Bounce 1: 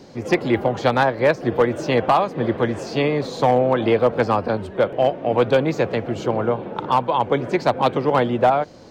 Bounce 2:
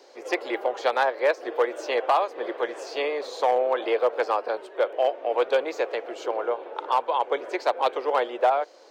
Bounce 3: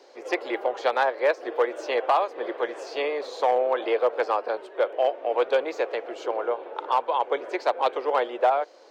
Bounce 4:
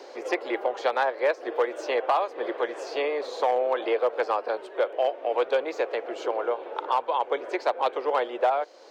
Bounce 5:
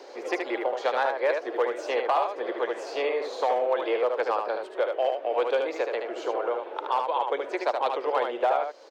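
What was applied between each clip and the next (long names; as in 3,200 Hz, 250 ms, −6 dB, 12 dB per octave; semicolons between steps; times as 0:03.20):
inverse Chebyshev high-pass filter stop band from 200 Hz, stop band 40 dB; level −4.5 dB
high-shelf EQ 6,800 Hz −7 dB
multiband upward and downward compressor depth 40%; level −1.5 dB
single-tap delay 75 ms −5 dB; level −1.5 dB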